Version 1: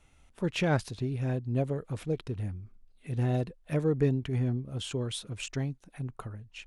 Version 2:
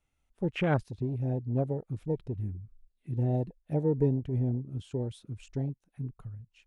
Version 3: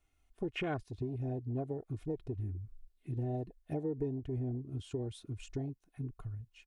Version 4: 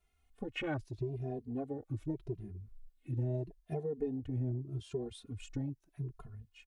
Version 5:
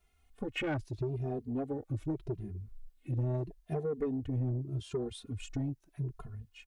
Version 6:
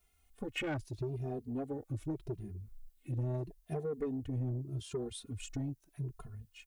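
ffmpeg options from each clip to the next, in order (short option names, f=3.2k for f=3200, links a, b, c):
-af "afwtdn=0.0224"
-af "aecho=1:1:2.8:0.52,acompressor=threshold=-37dB:ratio=3,volume=1dB"
-filter_complex "[0:a]asplit=2[a][b];[b]adelay=2.5,afreqshift=0.81[c];[a][c]amix=inputs=2:normalize=1,volume=2.5dB"
-af "aeval=exprs='0.0596*(cos(1*acos(clip(val(0)/0.0596,-1,1)))-cos(1*PI/2))+0.00531*(cos(5*acos(clip(val(0)/0.0596,-1,1)))-cos(5*PI/2))':c=same,volume=1.5dB"
-af "crystalizer=i=1.5:c=0,volume=-3dB"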